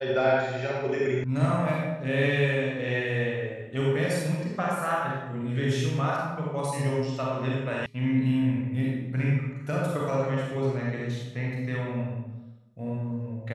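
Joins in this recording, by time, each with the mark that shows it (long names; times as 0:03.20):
0:01.24: cut off before it has died away
0:07.86: cut off before it has died away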